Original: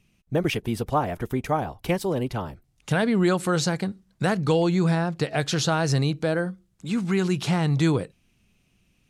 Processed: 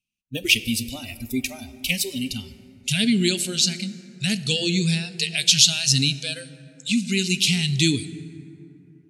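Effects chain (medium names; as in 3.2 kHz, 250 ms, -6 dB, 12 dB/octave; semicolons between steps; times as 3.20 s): FFT filter 150 Hz 0 dB, 270 Hz +6 dB, 1.1 kHz -27 dB, 2.6 kHz +15 dB; spectral noise reduction 29 dB; 3.43–4.30 s: treble shelf 4.8 kHz -8 dB; plate-style reverb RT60 3.4 s, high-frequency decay 0.35×, DRR 12.5 dB; trim -1 dB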